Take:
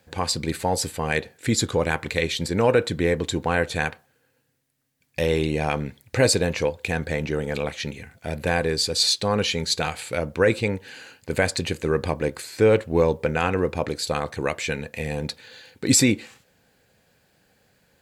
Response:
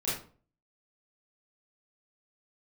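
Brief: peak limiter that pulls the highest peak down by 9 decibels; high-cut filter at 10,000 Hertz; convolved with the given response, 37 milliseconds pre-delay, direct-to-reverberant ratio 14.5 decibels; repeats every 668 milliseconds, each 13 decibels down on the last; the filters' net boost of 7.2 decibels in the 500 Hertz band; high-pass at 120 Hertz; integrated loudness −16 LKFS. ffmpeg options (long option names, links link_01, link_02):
-filter_complex "[0:a]highpass=120,lowpass=10000,equalizer=frequency=500:width_type=o:gain=8,alimiter=limit=-10dB:level=0:latency=1,aecho=1:1:668|1336|2004:0.224|0.0493|0.0108,asplit=2[link_01][link_02];[1:a]atrim=start_sample=2205,adelay=37[link_03];[link_02][link_03]afir=irnorm=-1:irlink=0,volume=-21dB[link_04];[link_01][link_04]amix=inputs=2:normalize=0,volume=6.5dB"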